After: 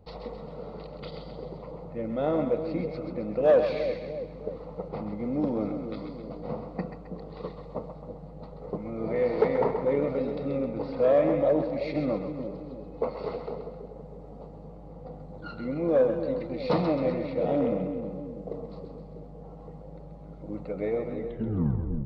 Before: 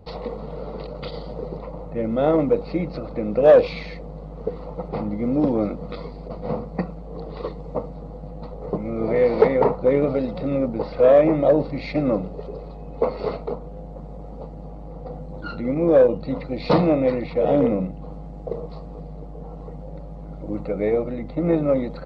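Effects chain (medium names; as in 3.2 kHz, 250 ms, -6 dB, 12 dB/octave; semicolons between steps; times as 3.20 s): tape stop on the ending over 0.87 s; two-band feedback delay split 550 Hz, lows 324 ms, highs 132 ms, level -7 dB; trim -8 dB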